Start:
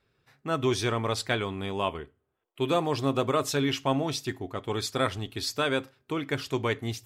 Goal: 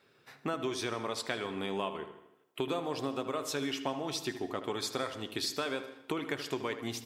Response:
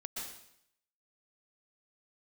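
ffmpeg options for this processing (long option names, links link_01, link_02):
-filter_complex "[0:a]highpass=200,acompressor=threshold=-40dB:ratio=6,asplit=2[link_01][link_02];[link_02]adelay=77,lowpass=frequency=3200:poles=1,volume=-11dB,asplit=2[link_03][link_04];[link_04]adelay=77,lowpass=frequency=3200:poles=1,volume=0.52,asplit=2[link_05][link_06];[link_06]adelay=77,lowpass=frequency=3200:poles=1,volume=0.52,asplit=2[link_07][link_08];[link_08]adelay=77,lowpass=frequency=3200:poles=1,volume=0.52,asplit=2[link_09][link_10];[link_10]adelay=77,lowpass=frequency=3200:poles=1,volume=0.52,asplit=2[link_11][link_12];[link_12]adelay=77,lowpass=frequency=3200:poles=1,volume=0.52[link_13];[link_01][link_03][link_05][link_07][link_09][link_11][link_13]amix=inputs=7:normalize=0,asplit=2[link_14][link_15];[1:a]atrim=start_sample=2205[link_16];[link_15][link_16]afir=irnorm=-1:irlink=0,volume=-13.5dB[link_17];[link_14][link_17]amix=inputs=2:normalize=0,volume=6.5dB"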